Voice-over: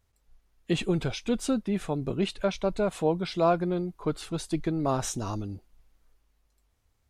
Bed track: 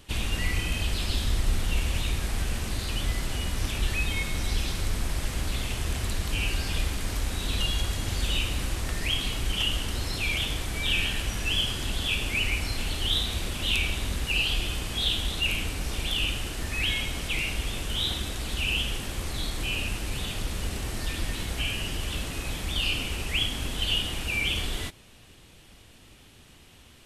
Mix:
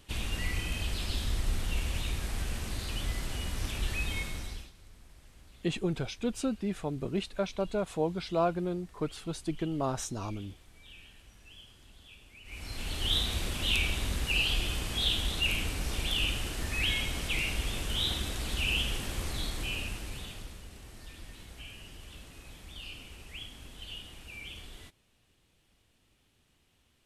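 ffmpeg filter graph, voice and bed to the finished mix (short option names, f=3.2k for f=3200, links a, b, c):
-filter_complex "[0:a]adelay=4950,volume=-4.5dB[a];[1:a]volume=18.5dB,afade=t=out:st=4.18:d=0.53:silence=0.0891251,afade=t=in:st=12.44:d=0.7:silence=0.0630957,afade=t=out:st=19.23:d=1.41:silence=0.188365[b];[a][b]amix=inputs=2:normalize=0"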